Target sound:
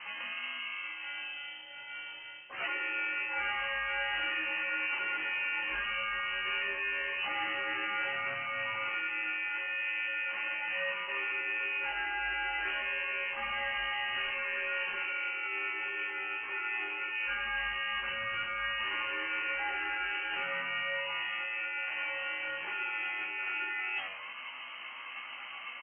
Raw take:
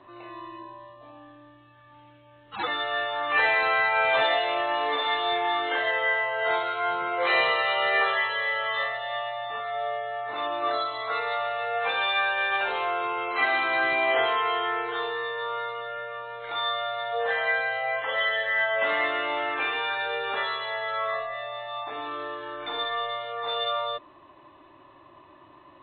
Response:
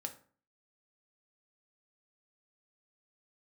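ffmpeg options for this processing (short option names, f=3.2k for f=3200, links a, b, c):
-filter_complex "[0:a]asplit=4[a][b][c][d];[b]asetrate=22050,aresample=44100,atempo=2,volume=-2dB[e];[c]asetrate=66075,aresample=44100,atempo=0.66742,volume=-11dB[f];[d]asetrate=88200,aresample=44100,atempo=0.5,volume=-2dB[g];[a][e][f][g]amix=inputs=4:normalize=0,lowpass=f=2.7k:t=q:w=0.5098,lowpass=f=2.7k:t=q:w=0.6013,lowpass=f=2.7k:t=q:w=0.9,lowpass=f=2.7k:t=q:w=2.563,afreqshift=-3200,asplit=2[h][i];[i]alimiter=limit=-16dB:level=0:latency=1,volume=3dB[j];[h][j]amix=inputs=2:normalize=0,aemphasis=mode=reproduction:type=50fm,asplit=5[k][l][m][n][o];[l]adelay=89,afreqshift=-89,volume=-19.5dB[p];[m]adelay=178,afreqshift=-178,volume=-26.1dB[q];[n]adelay=267,afreqshift=-267,volume=-32.6dB[r];[o]adelay=356,afreqshift=-356,volume=-39.2dB[s];[k][p][q][r][s]amix=inputs=5:normalize=0,areverse,acompressor=threshold=-33dB:ratio=5,areverse,bandreject=f=60:t=h:w=6,bandreject=f=120:t=h:w=6,asplit=2[t][u];[u]adelay=16,volume=-3dB[v];[t][v]amix=inputs=2:normalize=0,volume=-3dB"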